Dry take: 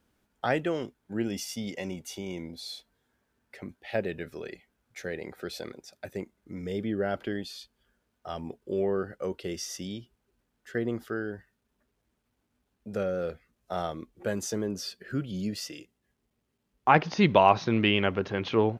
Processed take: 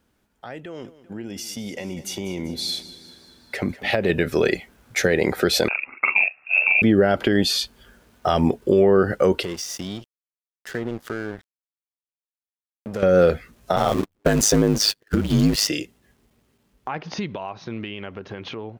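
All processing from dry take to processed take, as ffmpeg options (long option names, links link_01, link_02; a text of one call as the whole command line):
ffmpeg -i in.wav -filter_complex "[0:a]asettb=1/sr,asplit=3[link_01][link_02][link_03];[link_01]atrim=end=0.654[link_04];[link_02]atrim=start=0.65:end=4.1,asetpts=PTS-STARTPTS,afade=type=in:duration=0.004:curve=qsin,afade=type=out:start_time=3.446:duration=0.004:curve=qsin,acompressor=threshold=-36dB:ratio=4:attack=3.2:release=140:knee=1:detection=peak,aecho=1:1:195|390|585|780|975:0.141|0.0735|0.0382|0.0199|0.0103,atrim=end_sample=152145[link_05];[link_03]atrim=start=4.096[link_06];[link_04][link_05]acrossfade=duration=0.004:curve1=hsin:curve2=qsin[link_07];[link_07][link_06]acrossfade=duration=0.004:curve1=qsin:curve2=hsin,asettb=1/sr,asplit=3[link_08][link_09][link_10];[link_08]atrim=end=5.684[link_11];[link_09]atrim=start=5.68:end=6.82,asetpts=PTS-STARTPTS,afade=type=in:duration=0.004:curve=qsin,afade=type=out:start_time=1.136:duration=0.004:curve=qsin,lowpass=frequency=2400:width_type=q:width=0.5098,lowpass=frequency=2400:width_type=q:width=0.6013,lowpass=frequency=2400:width_type=q:width=0.9,lowpass=frequency=2400:width_type=q:width=2.563,afreqshift=-2800,asplit=2[link_12][link_13];[link_13]adelay=44,volume=-2.5dB[link_14];[link_12][link_14]amix=inputs=2:normalize=0,atrim=end_sample=50274,tremolo=f=70:d=0.571[link_15];[link_10]atrim=start=6.816[link_16];[link_11][link_15]acrossfade=duration=0.004:curve1=hsin:curve2=qsin[link_17];[link_17][link_16]acrossfade=duration=0.004:curve1=qsin:curve2=hsin,asettb=1/sr,asplit=3[link_18][link_19][link_20];[link_18]atrim=end=9.434[link_21];[link_19]atrim=start=9.43:end=13.03,asetpts=PTS-STARTPTS,afade=type=in:duration=0.004:curve=qsin,afade=type=out:start_time=3.596:duration=0.004:curve=qsin,acompressor=threshold=-52dB:ratio=2.5:attack=3.2:release=140:knee=1:detection=peak,aeval=exprs='sgn(val(0))*max(abs(val(0))-0.00133,0)':channel_layout=same[link_22];[link_20]atrim=start=13.026[link_23];[link_21][link_22]acrossfade=duration=0.004:curve1=hsin:curve2=qsin[link_24];[link_24][link_23]acrossfade=duration=0.004:curve1=qsin:curve2=hsin,asettb=1/sr,asplit=3[link_25][link_26][link_27];[link_25]atrim=end=13.764[link_28];[link_26]atrim=start=13.76:end=15.68,asetpts=PTS-STARTPTS,afade=type=in:duration=0.004:curve=qsin,afade=type=out:start_time=1.916:duration=0.004:curve=qsin,aeval=exprs='val(0)+0.5*0.01*sgn(val(0))':channel_layout=same,agate=range=-45dB:threshold=-37dB:ratio=16:release=100:detection=peak,aeval=exprs='val(0)*sin(2*PI*52*n/s)':channel_layout=same[link_29];[link_27]atrim=start=15.676[link_30];[link_28][link_29]acrossfade=duration=0.004:curve1=hsin:curve2=qsin[link_31];[link_31][link_30]acrossfade=duration=0.004:curve1=qsin:curve2=hsin,acompressor=threshold=-31dB:ratio=16,alimiter=level_in=3.5dB:limit=-24dB:level=0:latency=1:release=134,volume=-3.5dB,dynaudnorm=framelen=290:gausssize=21:maxgain=16.5dB,volume=4.5dB" out.wav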